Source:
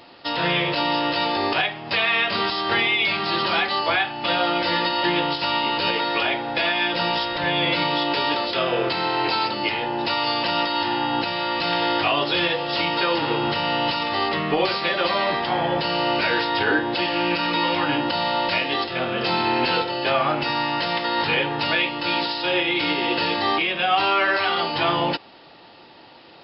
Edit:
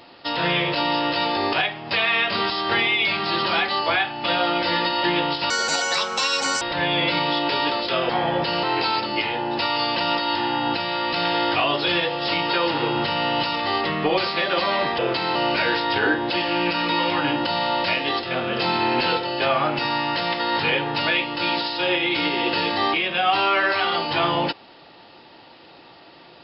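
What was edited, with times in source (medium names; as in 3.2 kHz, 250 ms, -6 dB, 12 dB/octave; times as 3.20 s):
5.50–7.26 s: speed 158%
8.74–9.11 s: swap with 15.46–16.00 s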